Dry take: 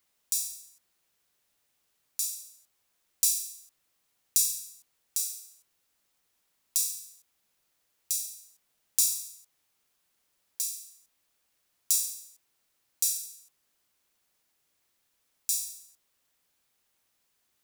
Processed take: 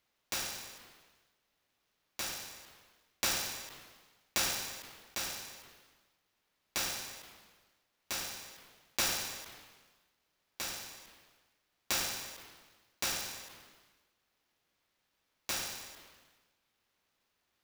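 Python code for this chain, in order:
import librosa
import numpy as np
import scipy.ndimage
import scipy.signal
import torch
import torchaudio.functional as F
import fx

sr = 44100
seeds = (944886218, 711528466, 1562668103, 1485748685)

y = scipy.signal.medfilt(x, 5)
y = fx.sustainer(y, sr, db_per_s=44.0)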